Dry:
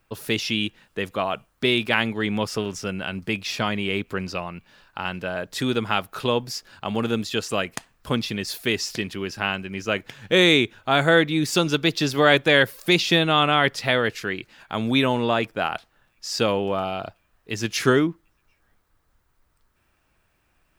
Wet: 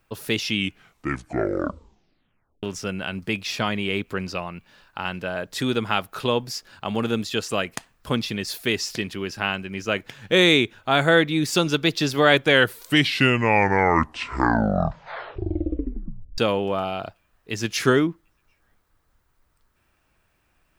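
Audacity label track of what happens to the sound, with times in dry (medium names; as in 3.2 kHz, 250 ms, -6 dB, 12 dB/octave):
0.470000	0.470000	tape stop 2.16 s
12.350000	12.350000	tape stop 4.03 s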